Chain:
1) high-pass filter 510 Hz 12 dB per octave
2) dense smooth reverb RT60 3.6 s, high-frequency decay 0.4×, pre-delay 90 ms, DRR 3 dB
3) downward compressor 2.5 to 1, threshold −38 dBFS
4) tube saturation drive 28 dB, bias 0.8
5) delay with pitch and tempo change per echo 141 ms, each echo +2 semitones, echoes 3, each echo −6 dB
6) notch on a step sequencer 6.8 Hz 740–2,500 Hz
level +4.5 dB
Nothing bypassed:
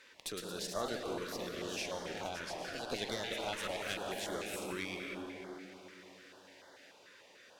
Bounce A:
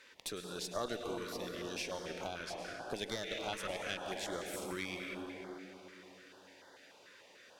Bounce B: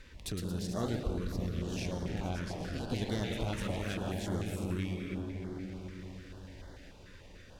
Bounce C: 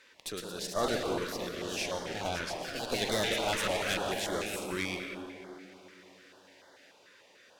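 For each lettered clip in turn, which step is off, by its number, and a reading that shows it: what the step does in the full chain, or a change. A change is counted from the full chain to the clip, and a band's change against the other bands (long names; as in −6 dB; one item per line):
5, change in integrated loudness −1.0 LU
1, 125 Hz band +19.5 dB
3, average gain reduction 3.5 dB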